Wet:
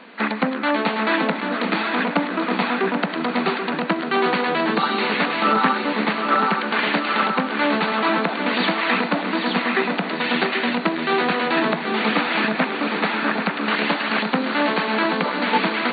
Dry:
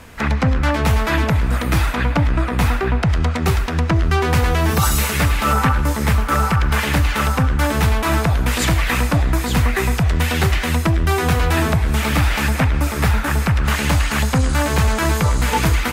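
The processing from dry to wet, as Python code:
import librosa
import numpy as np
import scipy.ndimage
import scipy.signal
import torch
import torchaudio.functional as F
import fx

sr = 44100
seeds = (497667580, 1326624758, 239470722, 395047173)

y = fx.brickwall_bandpass(x, sr, low_hz=180.0, high_hz=4600.0)
y = fx.echo_feedback(y, sr, ms=782, feedback_pct=54, wet_db=-7.0)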